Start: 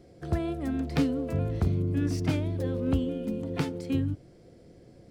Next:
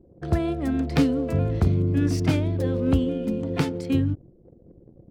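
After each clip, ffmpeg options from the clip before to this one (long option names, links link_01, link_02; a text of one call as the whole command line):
ffmpeg -i in.wav -af "anlmdn=0.01,volume=5.5dB" out.wav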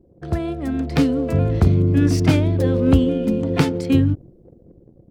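ffmpeg -i in.wav -af "dynaudnorm=framelen=310:gausssize=7:maxgain=11.5dB" out.wav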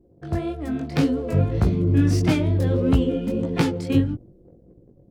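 ffmpeg -i in.wav -af "flanger=delay=16:depth=5.9:speed=1.7" out.wav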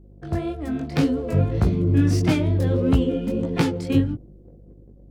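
ffmpeg -i in.wav -af "aeval=exprs='val(0)+0.00447*(sin(2*PI*50*n/s)+sin(2*PI*2*50*n/s)/2+sin(2*PI*3*50*n/s)/3+sin(2*PI*4*50*n/s)/4+sin(2*PI*5*50*n/s)/5)':channel_layout=same" out.wav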